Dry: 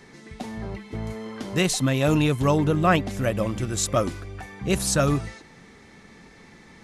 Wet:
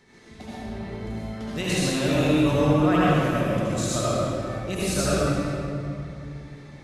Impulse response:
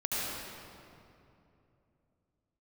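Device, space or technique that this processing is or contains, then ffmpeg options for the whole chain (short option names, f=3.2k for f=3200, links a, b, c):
stairwell: -filter_complex "[1:a]atrim=start_sample=2205[a];[0:a][a]afir=irnorm=-1:irlink=0,equalizer=f=3.7k:w=2.4:g=3,volume=-8dB"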